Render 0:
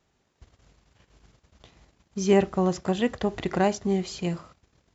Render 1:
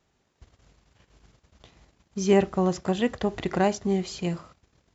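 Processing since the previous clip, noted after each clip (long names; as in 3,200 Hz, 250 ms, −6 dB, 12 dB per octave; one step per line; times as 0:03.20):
no processing that can be heard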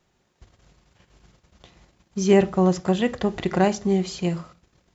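convolution reverb, pre-delay 5 ms, DRR 11 dB
level +2.5 dB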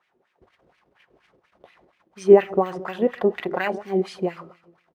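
repeating echo 137 ms, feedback 47%, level −19.5 dB
bad sample-rate conversion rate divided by 3×, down filtered, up hold
auto-filter band-pass sine 4.2 Hz 360–2,400 Hz
level +8 dB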